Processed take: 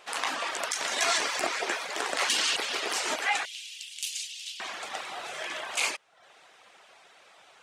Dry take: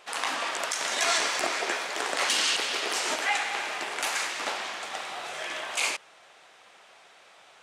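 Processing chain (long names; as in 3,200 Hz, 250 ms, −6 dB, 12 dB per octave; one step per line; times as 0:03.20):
reverb reduction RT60 0.55 s
0:03.45–0:04.60: elliptic high-pass filter 2,900 Hz, stop band 80 dB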